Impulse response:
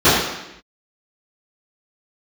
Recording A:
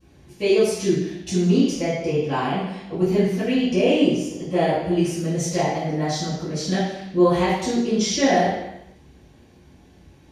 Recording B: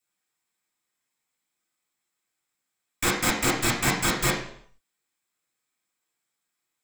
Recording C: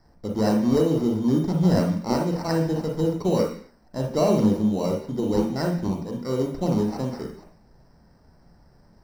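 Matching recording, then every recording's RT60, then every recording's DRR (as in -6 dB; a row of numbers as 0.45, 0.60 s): A; 0.85, 0.60, 0.45 s; -20.0, -5.5, 1.0 dB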